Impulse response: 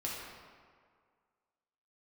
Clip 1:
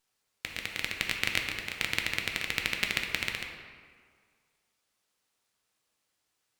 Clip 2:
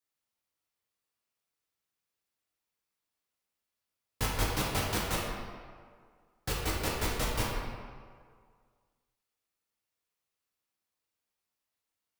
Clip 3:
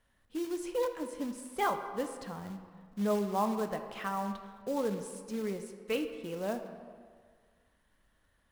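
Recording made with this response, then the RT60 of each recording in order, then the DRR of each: 2; 1.9, 1.9, 1.9 seconds; 2.0, −5.5, 6.5 decibels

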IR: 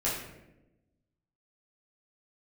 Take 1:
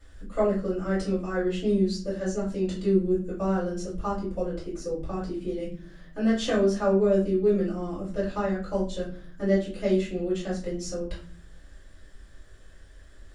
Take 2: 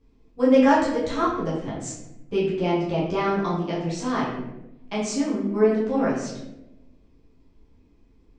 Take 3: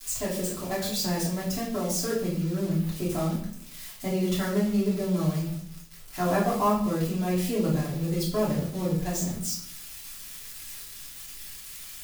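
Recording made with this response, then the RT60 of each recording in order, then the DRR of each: 2; 0.45, 0.95, 0.60 seconds; −12.5, −8.5, −8.0 decibels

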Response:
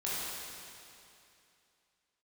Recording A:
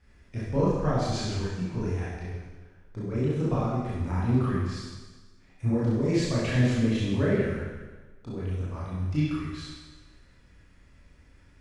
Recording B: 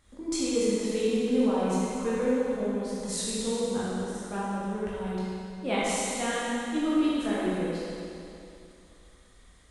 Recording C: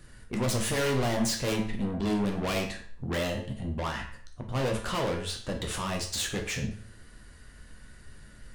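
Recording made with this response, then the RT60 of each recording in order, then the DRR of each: B; 1.3, 2.7, 0.50 seconds; −9.0, −9.0, 1.5 decibels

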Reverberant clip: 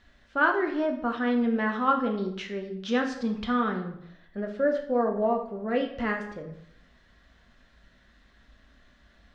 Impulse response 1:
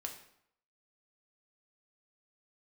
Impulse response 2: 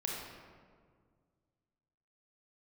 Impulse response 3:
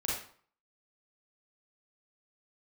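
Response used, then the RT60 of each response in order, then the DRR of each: 1; 0.70, 1.9, 0.50 seconds; 2.5, −2.5, −5.5 decibels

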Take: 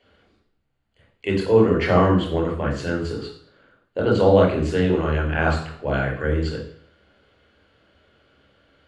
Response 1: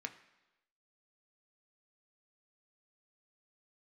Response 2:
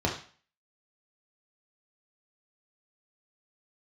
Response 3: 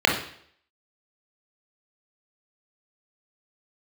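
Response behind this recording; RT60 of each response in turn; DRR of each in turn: 3; 1.0, 0.40, 0.60 seconds; 6.0, −1.0, −1.0 decibels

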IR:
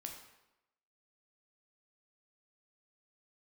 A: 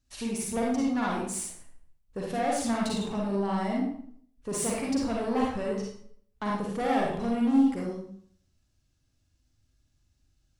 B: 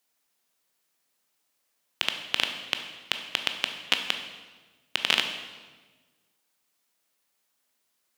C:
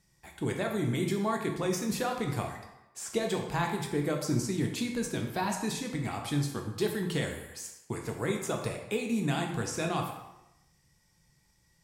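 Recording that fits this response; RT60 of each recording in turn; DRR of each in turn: C; 0.60, 1.3, 0.95 seconds; −3.5, 5.5, 2.0 decibels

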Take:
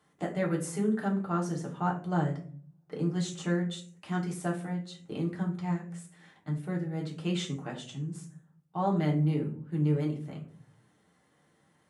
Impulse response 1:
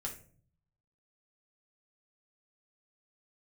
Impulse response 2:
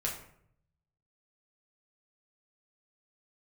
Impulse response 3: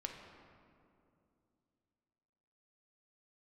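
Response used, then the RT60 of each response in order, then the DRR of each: 1; 0.45, 0.65, 2.6 seconds; −2.0, −3.5, 1.5 decibels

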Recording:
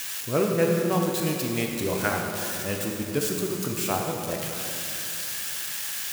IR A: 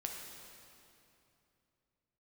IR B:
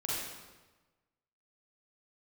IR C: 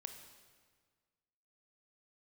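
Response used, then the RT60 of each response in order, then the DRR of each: A; 2.8, 1.2, 1.7 seconds; 0.5, −7.0, 6.0 decibels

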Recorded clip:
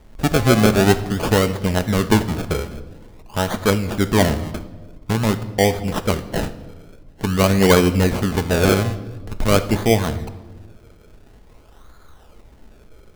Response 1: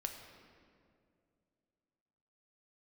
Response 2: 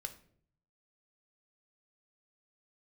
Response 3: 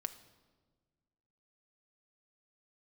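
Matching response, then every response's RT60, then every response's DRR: 3; 2.4, 0.60, 1.5 seconds; 3.5, 7.0, 9.5 decibels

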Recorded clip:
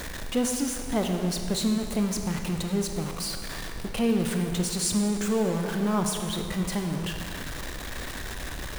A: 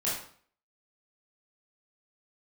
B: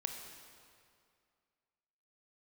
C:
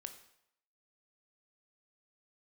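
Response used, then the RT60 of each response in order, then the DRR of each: B; 0.50, 2.3, 0.75 seconds; −8.5, 3.5, 7.0 decibels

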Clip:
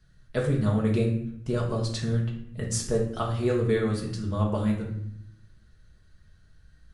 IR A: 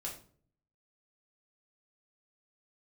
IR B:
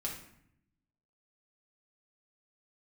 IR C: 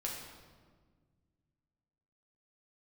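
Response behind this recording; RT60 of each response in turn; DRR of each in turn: B; 0.50, 0.70, 1.6 seconds; −3.5, −3.0, −3.0 decibels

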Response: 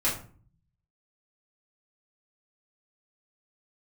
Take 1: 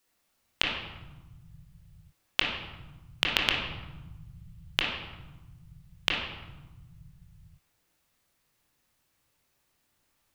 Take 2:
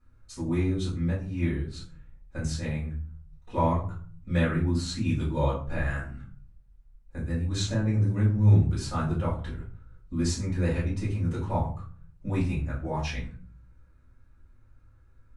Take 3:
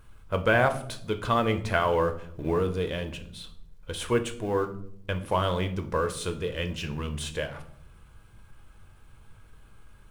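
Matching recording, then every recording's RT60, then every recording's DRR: 2; 1.1, 0.45, 0.65 seconds; −2.5, −8.5, 7.0 decibels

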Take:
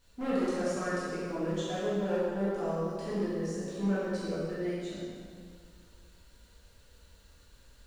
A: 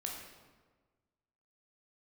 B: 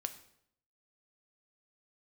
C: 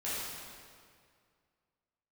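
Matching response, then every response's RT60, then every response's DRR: C; 1.4, 0.70, 2.1 seconds; −1.0, 8.0, −11.0 decibels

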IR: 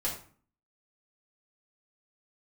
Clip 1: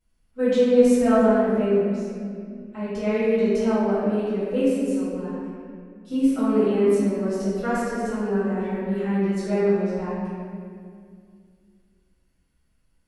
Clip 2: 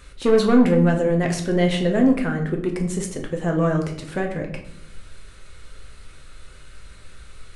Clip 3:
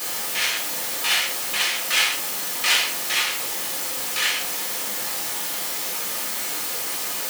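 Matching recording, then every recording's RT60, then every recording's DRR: 3; 2.2, 0.75, 0.45 seconds; −13.5, 2.0, −6.0 decibels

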